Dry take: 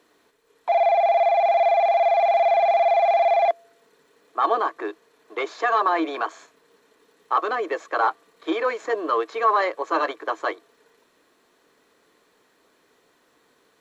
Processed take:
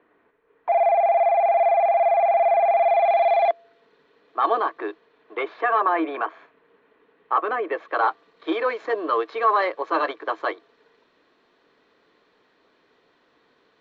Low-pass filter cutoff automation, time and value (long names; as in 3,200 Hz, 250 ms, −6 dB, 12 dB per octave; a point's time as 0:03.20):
low-pass filter 24 dB per octave
0:02.65 2,300 Hz
0:03.35 4,100 Hz
0:04.89 4,100 Hz
0:05.68 2,800 Hz
0:07.63 2,800 Hz
0:08.09 4,500 Hz